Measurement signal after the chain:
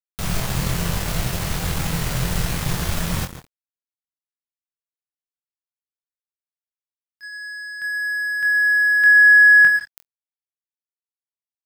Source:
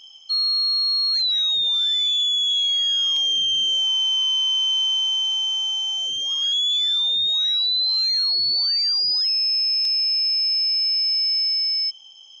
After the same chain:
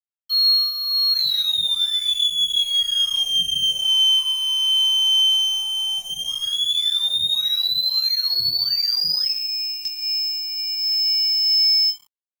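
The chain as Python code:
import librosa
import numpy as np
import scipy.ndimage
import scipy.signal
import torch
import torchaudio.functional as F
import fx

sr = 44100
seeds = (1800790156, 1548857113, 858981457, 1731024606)

y = fx.low_shelf_res(x, sr, hz=210.0, db=6.0, q=3.0)
y = fx.room_flutter(y, sr, wall_m=4.0, rt60_s=0.22)
y = fx.rev_plate(y, sr, seeds[0], rt60_s=0.62, hf_ratio=0.75, predelay_ms=105, drr_db=9.5)
y = fx.dynamic_eq(y, sr, hz=1700.0, q=7.2, threshold_db=-33.0, ratio=4.0, max_db=3)
y = np.sign(y) * np.maximum(np.abs(y) - 10.0 ** (-32.5 / 20.0), 0.0)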